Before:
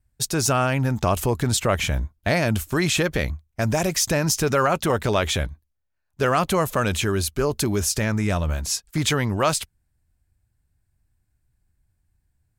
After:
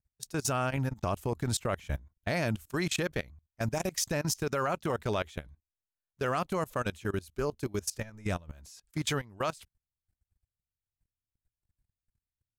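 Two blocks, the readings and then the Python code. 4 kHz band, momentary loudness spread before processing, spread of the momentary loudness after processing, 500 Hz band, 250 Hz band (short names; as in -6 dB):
-12.0 dB, 5 LU, 8 LU, -10.0 dB, -10.5 dB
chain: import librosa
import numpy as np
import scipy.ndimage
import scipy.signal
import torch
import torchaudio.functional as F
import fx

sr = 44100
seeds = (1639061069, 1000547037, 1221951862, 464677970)

y = fx.level_steps(x, sr, step_db=22)
y = y * librosa.db_to_amplitude(-7.5)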